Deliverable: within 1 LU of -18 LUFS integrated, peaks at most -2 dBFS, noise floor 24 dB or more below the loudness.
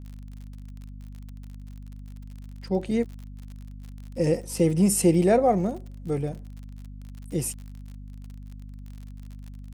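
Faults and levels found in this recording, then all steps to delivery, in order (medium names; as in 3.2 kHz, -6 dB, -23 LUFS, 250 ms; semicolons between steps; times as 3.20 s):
tick rate 48 per s; hum 50 Hz; highest harmonic 250 Hz; hum level -37 dBFS; loudness -24.5 LUFS; peak level -9.0 dBFS; loudness target -18.0 LUFS
-> de-click; hum notches 50/100/150/200/250 Hz; trim +6.5 dB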